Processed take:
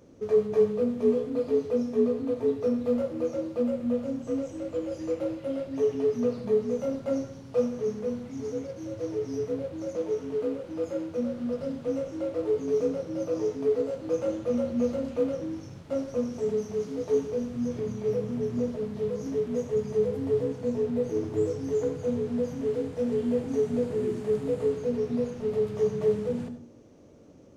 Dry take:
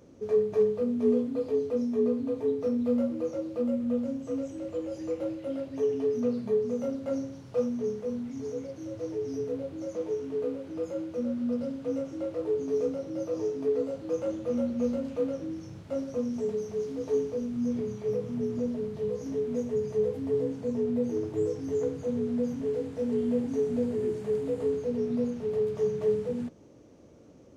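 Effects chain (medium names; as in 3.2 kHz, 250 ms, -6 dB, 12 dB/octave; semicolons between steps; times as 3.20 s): in parallel at -8 dB: crossover distortion -44 dBFS; on the sum: reverberation RT60 0.40 s, pre-delay 64 ms, DRR 10 dB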